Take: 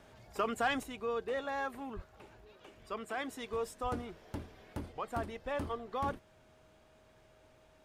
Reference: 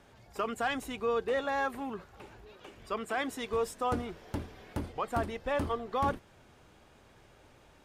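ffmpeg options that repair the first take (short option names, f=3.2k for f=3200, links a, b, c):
-filter_complex "[0:a]bandreject=f=630:w=30,asplit=3[a][b][c];[a]afade=t=out:st=1.95:d=0.02[d];[b]highpass=f=140:w=0.5412,highpass=f=140:w=1.3066,afade=t=in:st=1.95:d=0.02,afade=t=out:st=2.07:d=0.02[e];[c]afade=t=in:st=2.07:d=0.02[f];[d][e][f]amix=inputs=3:normalize=0,asplit=3[g][h][i];[g]afade=t=out:st=3.82:d=0.02[j];[h]highpass=f=140:w=0.5412,highpass=f=140:w=1.3066,afade=t=in:st=3.82:d=0.02,afade=t=out:st=3.94:d=0.02[k];[i]afade=t=in:st=3.94:d=0.02[l];[j][k][l]amix=inputs=3:normalize=0,asetnsamples=n=441:p=0,asendcmd='0.83 volume volume 5.5dB',volume=0dB"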